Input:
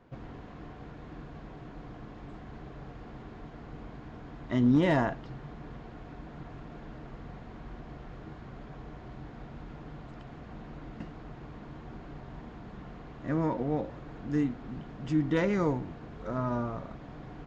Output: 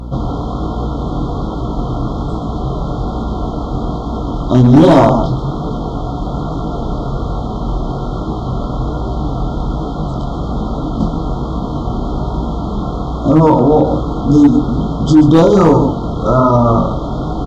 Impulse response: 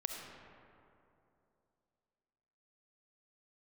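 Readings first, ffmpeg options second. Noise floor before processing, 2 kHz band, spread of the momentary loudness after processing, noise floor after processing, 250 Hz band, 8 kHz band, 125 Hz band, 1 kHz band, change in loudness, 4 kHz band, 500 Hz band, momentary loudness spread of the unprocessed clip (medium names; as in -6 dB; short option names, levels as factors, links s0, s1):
-47 dBFS, +8.0 dB, 12 LU, -21 dBFS, +20.0 dB, no reading, +21.5 dB, +22.5 dB, +16.5 dB, +19.5 dB, +21.5 dB, 18 LU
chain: -af "bandreject=f=50:t=h:w=6,bandreject=f=100:t=h:w=6,bandreject=f=150:t=h:w=6,bandreject=f=200:t=h:w=6,bandreject=f=250:t=h:w=6,bandreject=f=300:t=h:w=6,bandreject=f=350:t=h:w=6,bandreject=f=400:t=h:w=6,bandreject=f=450:t=h:w=6,bandreject=f=500:t=h:w=6,afftfilt=real='re*(1-between(b*sr/4096,1400,3100))':imag='im*(1-between(b*sr/4096,1400,3100))':win_size=4096:overlap=0.75,aecho=1:1:129:0.299,flanger=delay=18:depth=6.6:speed=1.2,asoftclip=type=hard:threshold=0.0562,aeval=exprs='val(0)+0.00224*(sin(2*PI*60*n/s)+sin(2*PI*2*60*n/s)/2+sin(2*PI*3*60*n/s)/3+sin(2*PI*4*60*n/s)/4+sin(2*PI*5*60*n/s)/5)':c=same,alimiter=level_in=28.2:limit=0.891:release=50:level=0:latency=1" -ar 32000 -c:a libmp3lame -b:a 128k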